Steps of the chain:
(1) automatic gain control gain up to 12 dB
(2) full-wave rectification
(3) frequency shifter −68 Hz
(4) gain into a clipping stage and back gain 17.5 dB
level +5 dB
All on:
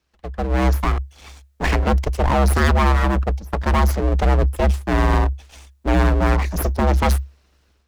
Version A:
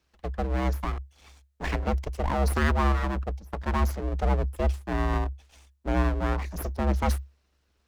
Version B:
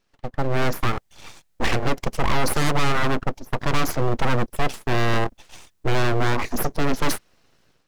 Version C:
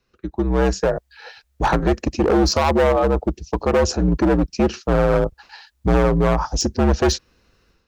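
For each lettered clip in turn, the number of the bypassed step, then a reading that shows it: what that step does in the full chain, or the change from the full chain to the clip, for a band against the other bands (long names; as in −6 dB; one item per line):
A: 1, change in crest factor +8.5 dB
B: 3, 4 kHz band +5.5 dB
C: 2, 125 Hz band −8.0 dB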